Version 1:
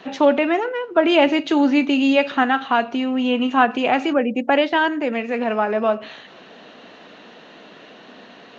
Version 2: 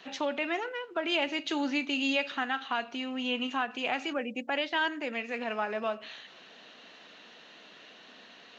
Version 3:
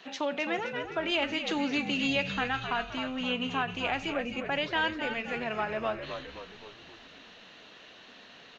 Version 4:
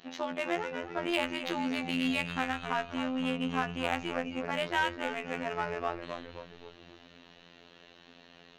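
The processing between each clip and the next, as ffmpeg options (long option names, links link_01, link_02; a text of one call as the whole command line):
ffmpeg -i in.wav -af "alimiter=limit=-8.5dB:level=0:latency=1:release=288,tiltshelf=frequency=1500:gain=-6.5,volume=-8.5dB" out.wav
ffmpeg -i in.wav -filter_complex "[0:a]asplit=7[link_01][link_02][link_03][link_04][link_05][link_06][link_07];[link_02]adelay=260,afreqshift=-76,volume=-8.5dB[link_08];[link_03]adelay=520,afreqshift=-152,volume=-14dB[link_09];[link_04]adelay=780,afreqshift=-228,volume=-19.5dB[link_10];[link_05]adelay=1040,afreqshift=-304,volume=-25dB[link_11];[link_06]adelay=1300,afreqshift=-380,volume=-30.6dB[link_12];[link_07]adelay=1560,afreqshift=-456,volume=-36.1dB[link_13];[link_01][link_08][link_09][link_10][link_11][link_12][link_13]amix=inputs=7:normalize=0" out.wav
ffmpeg -i in.wav -filter_complex "[0:a]afftfilt=real='hypot(re,im)*cos(PI*b)':imag='0':win_size=2048:overlap=0.75,asplit=2[link_01][link_02];[link_02]adynamicsmooth=sensitivity=4:basefreq=620,volume=-2dB[link_03];[link_01][link_03]amix=inputs=2:normalize=0,volume=-2dB" out.wav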